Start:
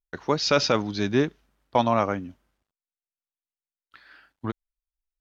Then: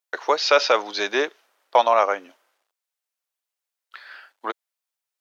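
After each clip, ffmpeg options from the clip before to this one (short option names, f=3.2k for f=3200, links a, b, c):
-filter_complex "[0:a]acrossover=split=4100[a][b];[b]acompressor=threshold=-38dB:ratio=4:attack=1:release=60[c];[a][c]amix=inputs=2:normalize=0,highpass=f=480:w=0.5412,highpass=f=480:w=1.3066,asplit=2[d][e];[e]acompressor=threshold=-30dB:ratio=6,volume=-1dB[f];[d][f]amix=inputs=2:normalize=0,volume=4dB"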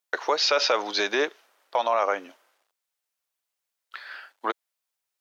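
-af "alimiter=limit=-14.5dB:level=0:latency=1:release=78,volume=2dB"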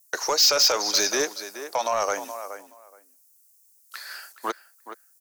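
-filter_complex "[0:a]asplit=2[a][b];[b]adelay=423,lowpass=f=2.6k:p=1,volume=-12dB,asplit=2[c][d];[d]adelay=423,lowpass=f=2.6k:p=1,volume=0.17[e];[a][c][e]amix=inputs=3:normalize=0,acrossover=split=130[f][g];[g]aexciter=amount=14.7:drive=4.5:freq=5.1k[h];[f][h]amix=inputs=2:normalize=0,asoftclip=type=tanh:threshold=-14.5dB"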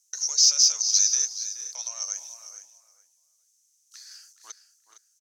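-af "acrusher=bits=10:mix=0:aa=0.000001,bandpass=f=6.1k:t=q:w=6.2:csg=0,aecho=1:1:459:0.224,volume=7dB"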